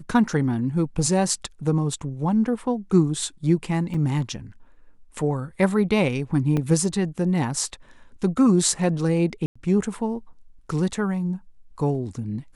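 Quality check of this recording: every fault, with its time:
3.94 s: dropout 4.3 ms
6.57 s: dropout 2.7 ms
9.46–9.55 s: dropout 95 ms

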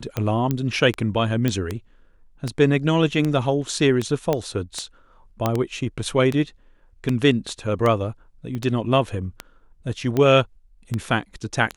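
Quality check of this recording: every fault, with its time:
tick 78 rpm -11 dBFS
0.51 s: pop -10 dBFS
1.48 s: pop -9 dBFS
4.33 s: pop -9 dBFS
5.46 s: pop -7 dBFS
8.55 s: pop -19 dBFS

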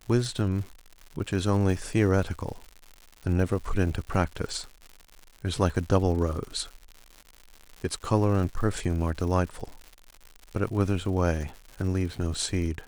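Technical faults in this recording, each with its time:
crackle 160 per s -36 dBFS

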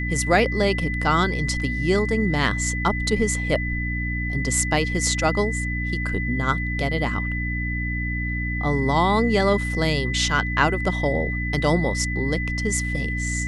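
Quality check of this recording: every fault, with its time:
hum 60 Hz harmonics 5 -27 dBFS
whine 2 kHz -28 dBFS

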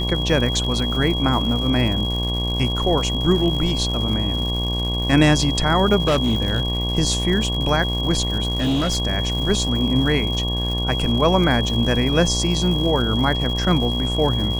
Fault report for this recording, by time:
buzz 60 Hz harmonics 19 -24 dBFS
crackle 220 per s -28 dBFS
whine 3.3 kHz -25 dBFS
0.64 s: dropout 2.2 ms
6.07–6.62 s: clipped -13.5 dBFS
8.48–8.98 s: clipped -16.5 dBFS

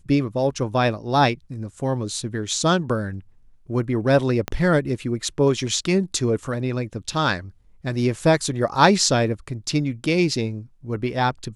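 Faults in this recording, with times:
4.48 s: pop -10 dBFS

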